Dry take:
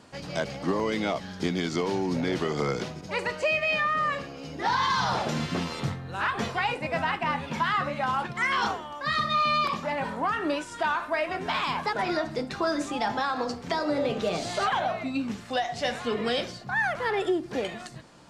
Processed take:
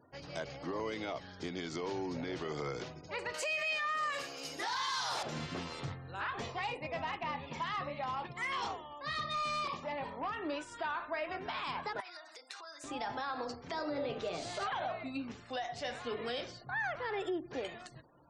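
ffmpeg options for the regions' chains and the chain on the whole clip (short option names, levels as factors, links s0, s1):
-filter_complex "[0:a]asettb=1/sr,asplit=3[s0][s1][s2];[s0]atrim=end=3.344[s3];[s1]atrim=start=3.34:end=5.23,asetpts=PTS-STARTPTS,afade=t=in:d=0.004:c=qsin,afade=t=out:st=1.886:d=0.004:c=qsin,aemphasis=mode=production:type=riaa,acontrast=34[s4];[s2]atrim=start=5.226[s5];[s3][s4]acrossfade=d=0.004:c1=hsin:c2=qsin[s6];[s6][s5]acrossfade=d=0.004:c1=qsin:c2=hsin,asettb=1/sr,asplit=3[s7][s8][s9];[s7]atrim=end=6.394[s10];[s8]atrim=start=6.39:end=10.49,asetpts=PTS-STARTPTS,afade=t=in:d=0.004:c=qsin,afade=t=out:st=4.096:d=0.004:c=qsin,equalizer=f=1500:w=5.7:g=-12.5,asoftclip=type=hard:threshold=0.0708[s11];[s9]atrim=start=10.486[s12];[s10][s11]acrossfade=d=0.004:c1=hsin:c2=qsin[s13];[s13][s12]acrossfade=d=0.004:c1=qsin:c2=hsin,asettb=1/sr,asplit=3[s14][s15][s16];[s14]atrim=end=12.004[s17];[s15]atrim=start=12:end=12.84,asetpts=PTS-STARTPTS,afade=t=in:d=0.004:c=qsin,afade=t=out:st=0.836:d=0.004:c=qsin,acompressor=threshold=0.0224:ratio=12:attack=3.2:release=140:knee=1:detection=peak,highpass=890,aemphasis=mode=production:type=50fm[s18];[s16]atrim=start=12.836[s19];[s17][s18]acrossfade=d=0.004:c1=hsin:c2=qsin[s20];[s20][s19]acrossfade=d=0.004:c1=qsin:c2=hsin,alimiter=limit=0.106:level=0:latency=1:release=45,afftfilt=real='re*gte(hypot(re,im),0.00355)':imag='im*gte(hypot(re,im),0.00355)':win_size=1024:overlap=0.75,equalizer=f=200:w=4.5:g=-12,volume=0.376"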